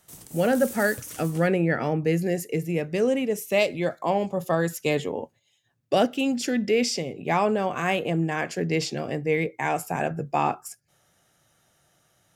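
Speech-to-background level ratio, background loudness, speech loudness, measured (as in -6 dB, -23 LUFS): 13.5 dB, -39.0 LUFS, -25.5 LUFS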